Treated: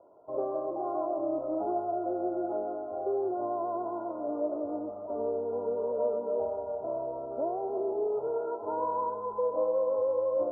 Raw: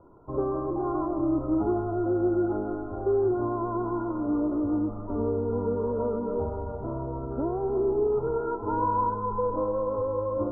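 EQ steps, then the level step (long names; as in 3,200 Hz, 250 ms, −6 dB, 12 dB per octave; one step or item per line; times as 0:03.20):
resonant band-pass 630 Hz, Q 5.4
+8.0 dB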